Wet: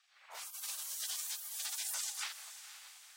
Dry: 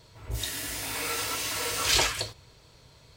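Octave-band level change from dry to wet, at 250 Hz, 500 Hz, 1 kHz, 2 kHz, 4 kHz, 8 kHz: below −40 dB, −28.0 dB, −18.5 dB, −17.0 dB, −14.0 dB, −7.5 dB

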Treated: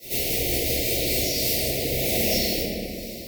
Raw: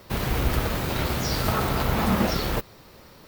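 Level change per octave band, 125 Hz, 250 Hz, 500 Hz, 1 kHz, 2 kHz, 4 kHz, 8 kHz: −6.0, −3.0, +2.5, −11.0, −0.5, +6.0, +9.5 decibels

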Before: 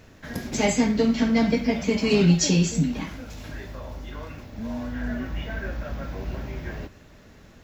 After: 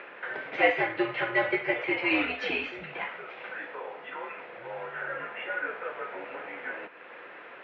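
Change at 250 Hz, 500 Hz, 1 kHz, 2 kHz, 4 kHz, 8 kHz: −14.0 dB, −4.0 dB, +2.0 dB, +5.0 dB, −7.0 dB, below −35 dB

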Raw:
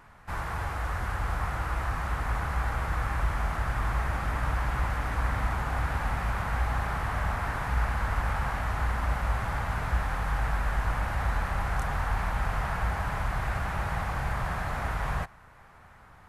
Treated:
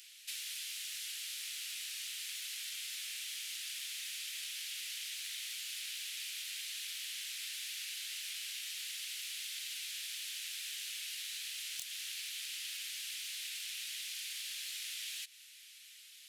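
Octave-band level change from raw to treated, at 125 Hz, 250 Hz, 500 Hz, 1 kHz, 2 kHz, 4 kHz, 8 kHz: below −40 dB, below −40 dB, below −40 dB, −39.0 dB, −12.0 dB, +8.5 dB, +9.5 dB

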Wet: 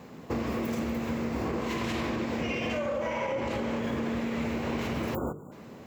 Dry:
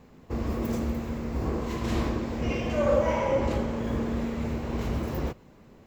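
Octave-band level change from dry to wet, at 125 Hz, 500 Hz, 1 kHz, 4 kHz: −6.0, −3.5, −1.0, +2.5 decibels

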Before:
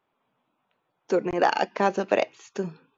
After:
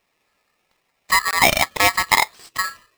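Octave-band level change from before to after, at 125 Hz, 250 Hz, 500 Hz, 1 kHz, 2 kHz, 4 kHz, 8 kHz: +3.5 dB, −4.0 dB, −3.5 dB, +6.5 dB, +14.0 dB, +17.5 dB, can't be measured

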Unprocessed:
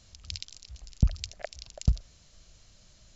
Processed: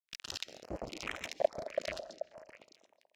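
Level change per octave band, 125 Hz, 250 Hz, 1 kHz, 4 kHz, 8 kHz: −24.0 dB, −9.5 dB, +8.5 dB, −2.0 dB, can't be measured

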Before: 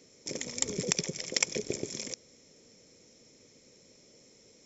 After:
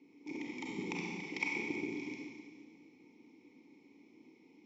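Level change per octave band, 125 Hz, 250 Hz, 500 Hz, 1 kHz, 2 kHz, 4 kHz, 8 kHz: −8.5 dB, +0.5 dB, −8.0 dB, +0.5 dB, +0.5 dB, −16.0 dB, can't be measured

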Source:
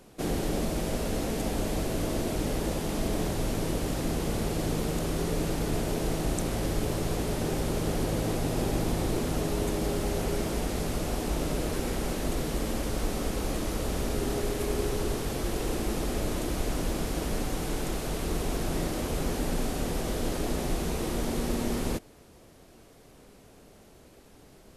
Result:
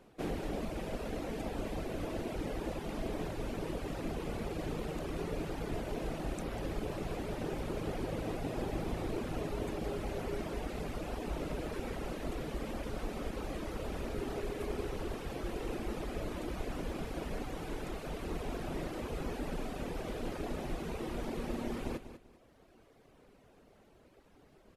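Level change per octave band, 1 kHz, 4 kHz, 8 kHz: −7.0, −11.5, −17.0 decibels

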